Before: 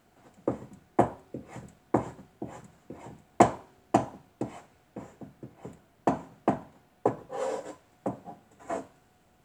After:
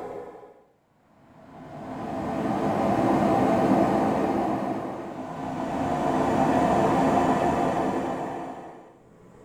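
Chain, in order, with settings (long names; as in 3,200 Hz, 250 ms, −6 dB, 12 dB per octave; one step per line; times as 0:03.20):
played backwards from end to start
leveller curve on the samples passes 3
extreme stretch with random phases 8.5×, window 0.50 s, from 0:02.54
level −3.5 dB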